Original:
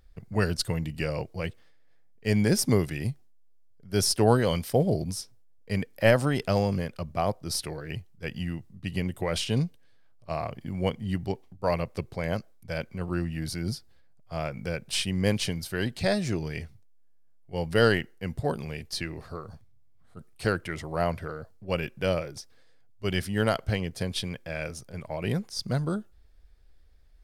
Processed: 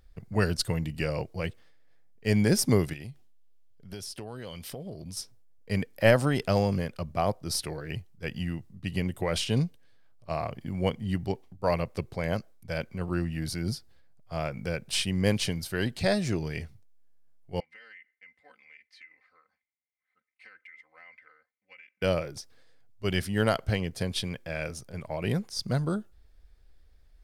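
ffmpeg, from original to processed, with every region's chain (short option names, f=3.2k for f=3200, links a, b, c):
-filter_complex "[0:a]asettb=1/sr,asplit=3[a][b][c];[a]atrim=end=2.934[d];[b]atrim=start=2.93:end=5.17,asetpts=PTS-STARTPTS,afade=t=in:d=0.004:c=qsin,afade=t=out:st=2.236:d=0.004:c=qsin,equalizer=f=3.1k:w=1.6:g=6,acompressor=threshold=-36dB:ratio=10:attack=3.2:release=140:knee=1:detection=peak[e];[c]atrim=start=5.166[f];[d][e]acrossfade=d=0.004:c1=hsin:c2=qsin[g];[g][f]acrossfade=d=0.004:c1=qsin:c2=hsin,asettb=1/sr,asplit=3[h][i][j];[h]atrim=end=17.604[k];[i]atrim=start=17.6:end=22.02,asetpts=PTS-STARTPTS,afade=t=in:d=0.004:c=qsin,afade=t=out:st=4.416:d=0.004:c=qsin,bandpass=f=2.1k:t=q:w=12,acompressor=threshold=-49dB:ratio=5:attack=3.2:release=140:knee=1:detection=peak,aecho=1:1:3.9:0.9,atrim=end_sample=194922[l];[j]atrim=start=22.016[m];[k][l]acrossfade=d=0.004:c1=hsin:c2=qsin[n];[n][m]acrossfade=d=0.004:c1=qsin:c2=hsin"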